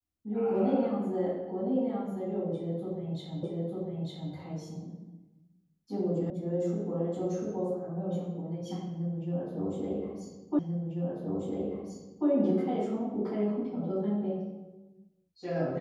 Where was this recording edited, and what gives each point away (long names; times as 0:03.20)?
0:03.43: the same again, the last 0.9 s
0:06.30: cut off before it has died away
0:10.59: the same again, the last 1.69 s